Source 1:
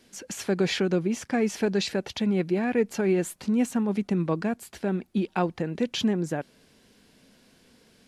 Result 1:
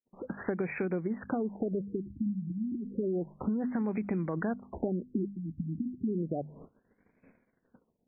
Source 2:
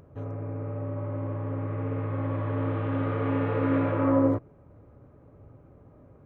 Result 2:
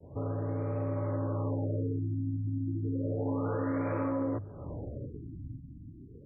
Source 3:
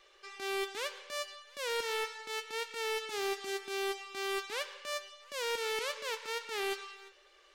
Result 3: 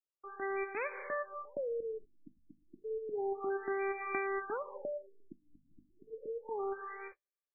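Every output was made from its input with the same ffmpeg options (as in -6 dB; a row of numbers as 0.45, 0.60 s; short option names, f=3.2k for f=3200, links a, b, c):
-af "bandreject=f=50:t=h:w=6,bandreject=f=100:t=h:w=6,bandreject=f=150:t=h:w=6,bandreject=f=200:t=h:w=6,bandreject=f=250:t=h:w=6,agate=range=-47dB:threshold=-55dB:ratio=16:detection=peak,lowpass=f=6.9k:w=0.5412,lowpass=f=6.9k:w=1.3066,dynaudnorm=f=400:g=7:m=12.5dB,alimiter=limit=-12dB:level=0:latency=1:release=40,acompressor=threshold=-34dB:ratio=8,afftfilt=real='re*lt(b*sr/1024,300*pow(2600/300,0.5+0.5*sin(2*PI*0.31*pts/sr)))':imag='im*lt(b*sr/1024,300*pow(2600/300,0.5+0.5*sin(2*PI*0.31*pts/sr)))':win_size=1024:overlap=0.75,volume=4.5dB"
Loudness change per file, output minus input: -7.0, -5.5, -2.0 LU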